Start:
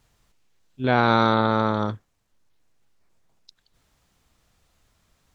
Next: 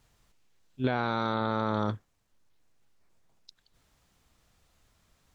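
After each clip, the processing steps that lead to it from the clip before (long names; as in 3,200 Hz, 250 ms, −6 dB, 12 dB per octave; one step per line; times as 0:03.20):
brickwall limiter −14 dBFS, peak gain reduction 10.5 dB
level −2 dB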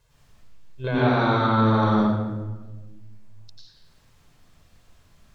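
convolution reverb RT60 1.3 s, pre-delay 87 ms, DRR −7 dB
level −2 dB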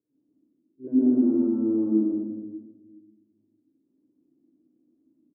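flat-topped band-pass 290 Hz, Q 4
single-tap delay 115 ms −4 dB
level +8.5 dB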